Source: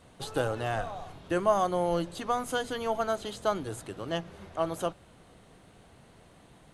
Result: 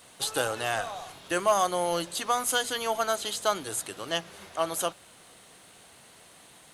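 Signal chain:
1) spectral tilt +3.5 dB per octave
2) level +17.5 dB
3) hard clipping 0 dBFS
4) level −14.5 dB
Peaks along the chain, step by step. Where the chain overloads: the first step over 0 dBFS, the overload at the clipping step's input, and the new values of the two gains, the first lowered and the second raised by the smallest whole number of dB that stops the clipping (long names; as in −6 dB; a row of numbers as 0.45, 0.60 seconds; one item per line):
−13.5, +4.0, 0.0, −14.5 dBFS
step 2, 4.0 dB
step 2 +13.5 dB, step 4 −10.5 dB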